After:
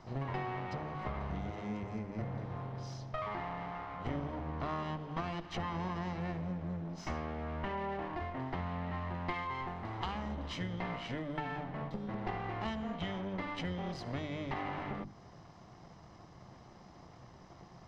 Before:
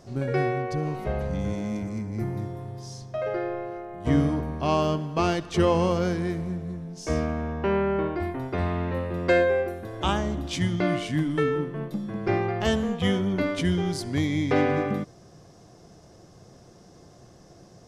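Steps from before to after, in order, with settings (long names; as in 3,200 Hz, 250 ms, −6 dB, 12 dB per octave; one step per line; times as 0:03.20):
lower of the sound and its delayed copy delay 1 ms
low-shelf EQ 420 Hz −4 dB
downward compressor 6 to 1, threshold −36 dBFS, peak gain reduction 14.5 dB
high-frequency loss of the air 190 metres
mains-hum notches 50/100/150/200/250/300/350 Hz
level +1.5 dB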